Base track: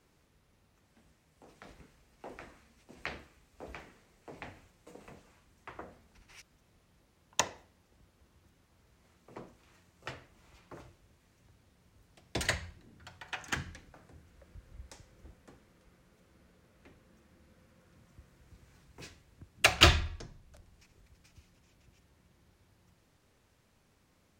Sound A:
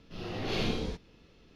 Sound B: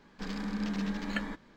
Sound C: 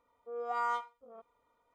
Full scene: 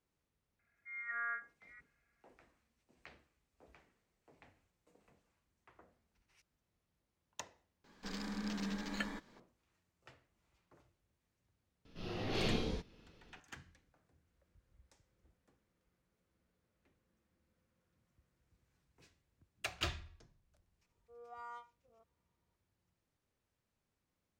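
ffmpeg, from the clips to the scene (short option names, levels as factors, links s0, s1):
-filter_complex "[3:a]asplit=2[s0][s1];[0:a]volume=0.133[s2];[s0]lowpass=f=2200:t=q:w=0.5098,lowpass=f=2200:t=q:w=0.6013,lowpass=f=2200:t=q:w=0.9,lowpass=f=2200:t=q:w=2.563,afreqshift=-2600[s3];[2:a]bass=f=250:g=-3,treble=f=4000:g=7[s4];[s3]atrim=end=1.74,asetpts=PTS-STARTPTS,volume=0.447,afade=t=in:d=0.004:c=hsin,afade=t=out:st=1.736:d=0.004:c=hsin,adelay=590[s5];[s4]atrim=end=1.56,asetpts=PTS-STARTPTS,volume=0.531,afade=t=in:d=0.004:c=hsin,afade=t=out:st=1.556:d=0.004:c=hsin,adelay=7840[s6];[1:a]atrim=end=1.55,asetpts=PTS-STARTPTS,volume=0.631,afade=t=in:d=0.004:c=hsin,afade=t=out:st=1.546:d=0.004:c=hsin,adelay=11850[s7];[s1]atrim=end=1.74,asetpts=PTS-STARTPTS,volume=0.15,afade=t=in:d=0.004:c=hsin,afade=t=out:st=1.736:d=0.004:c=hsin,adelay=20820[s8];[s2][s5][s6][s7][s8]amix=inputs=5:normalize=0"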